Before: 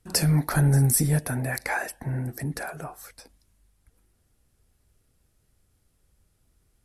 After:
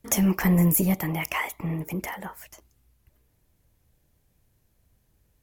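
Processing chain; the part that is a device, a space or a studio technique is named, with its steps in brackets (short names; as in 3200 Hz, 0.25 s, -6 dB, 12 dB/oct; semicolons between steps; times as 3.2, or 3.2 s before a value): nightcore (varispeed +26%)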